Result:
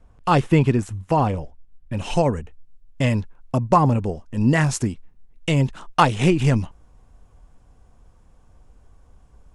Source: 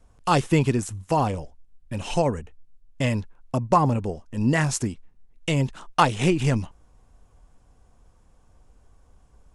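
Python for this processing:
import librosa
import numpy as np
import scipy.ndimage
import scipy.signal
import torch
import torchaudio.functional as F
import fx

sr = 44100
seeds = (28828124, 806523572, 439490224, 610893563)

y = fx.bass_treble(x, sr, bass_db=2, treble_db=fx.steps((0.0, -10.0), (1.97, -3.0)))
y = F.gain(torch.from_numpy(y), 2.5).numpy()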